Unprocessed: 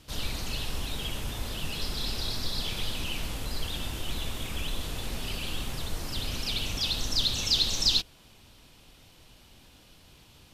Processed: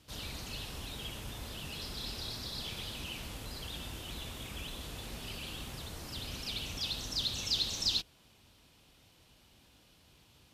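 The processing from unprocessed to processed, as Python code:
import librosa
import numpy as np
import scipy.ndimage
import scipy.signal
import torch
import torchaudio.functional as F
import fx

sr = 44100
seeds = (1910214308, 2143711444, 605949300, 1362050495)

y = scipy.signal.sosfilt(scipy.signal.butter(2, 46.0, 'highpass', fs=sr, output='sos'), x)
y = y * librosa.db_to_amplitude(-7.0)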